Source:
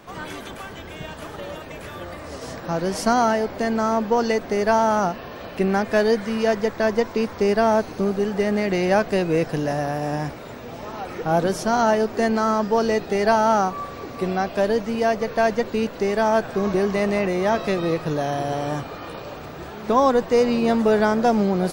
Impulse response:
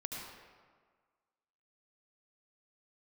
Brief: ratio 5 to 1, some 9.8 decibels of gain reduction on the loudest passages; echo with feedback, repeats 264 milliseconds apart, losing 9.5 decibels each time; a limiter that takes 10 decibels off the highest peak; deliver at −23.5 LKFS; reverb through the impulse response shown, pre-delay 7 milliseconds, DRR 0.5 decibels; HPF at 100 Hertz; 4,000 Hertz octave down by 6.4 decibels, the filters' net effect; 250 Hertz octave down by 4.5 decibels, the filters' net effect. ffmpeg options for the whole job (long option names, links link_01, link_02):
-filter_complex "[0:a]highpass=100,equalizer=frequency=250:width_type=o:gain=-5.5,equalizer=frequency=4000:width_type=o:gain=-9,acompressor=threshold=-26dB:ratio=5,alimiter=level_in=0.5dB:limit=-24dB:level=0:latency=1,volume=-0.5dB,aecho=1:1:264|528|792|1056:0.335|0.111|0.0365|0.012,asplit=2[link_01][link_02];[1:a]atrim=start_sample=2205,adelay=7[link_03];[link_02][link_03]afir=irnorm=-1:irlink=0,volume=-0.5dB[link_04];[link_01][link_04]amix=inputs=2:normalize=0,volume=7dB"